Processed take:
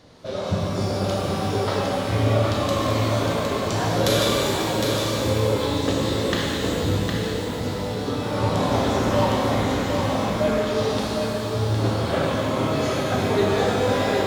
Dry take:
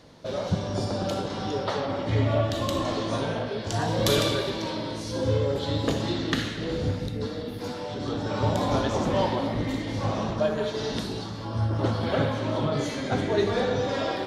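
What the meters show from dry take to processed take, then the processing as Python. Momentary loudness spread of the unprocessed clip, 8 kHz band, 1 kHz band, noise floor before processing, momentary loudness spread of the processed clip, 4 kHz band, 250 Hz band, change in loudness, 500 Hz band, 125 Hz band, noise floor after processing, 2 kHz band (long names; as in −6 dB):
7 LU, +7.0 dB, +5.5 dB, −35 dBFS, 5 LU, +5.0 dB, +4.5 dB, +4.5 dB, +4.5 dB, +4.0 dB, −27 dBFS, +5.5 dB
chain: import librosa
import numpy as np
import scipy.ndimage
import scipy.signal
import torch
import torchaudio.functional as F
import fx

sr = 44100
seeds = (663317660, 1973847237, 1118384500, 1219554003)

y = x + 10.0 ** (-5.0 / 20.0) * np.pad(x, (int(760 * sr / 1000.0), 0))[:len(x)]
y = fx.rev_shimmer(y, sr, seeds[0], rt60_s=2.0, semitones=12, shimmer_db=-8, drr_db=-0.5)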